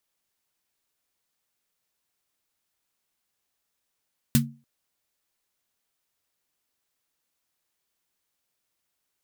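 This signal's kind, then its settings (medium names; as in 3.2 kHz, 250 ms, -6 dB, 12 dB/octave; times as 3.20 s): snare drum length 0.29 s, tones 140 Hz, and 230 Hz, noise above 1.2 kHz, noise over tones -4 dB, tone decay 0.33 s, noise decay 0.12 s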